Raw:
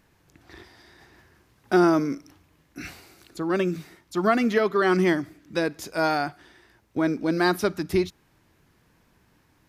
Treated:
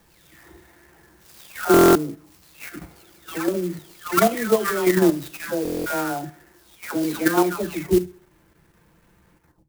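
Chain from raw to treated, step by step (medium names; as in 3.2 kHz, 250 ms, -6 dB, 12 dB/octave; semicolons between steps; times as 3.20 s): delay that grows with frequency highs early, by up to 708 ms; low-pass 4.7 kHz 12 dB/octave; on a send at -15 dB: reverberation, pre-delay 22 ms; on the sum: dynamic bell 170 Hz, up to -5 dB, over -44 dBFS, Q 5; in parallel at +3 dB: level held to a coarse grid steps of 22 dB; on the sum: band-stop 760 Hz, Q 12; thinning echo 67 ms, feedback 50%, high-pass 180 Hz, level -21 dB; buffer glitch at 1.72/5.63 s, samples 1024, times 9; sampling jitter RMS 0.053 ms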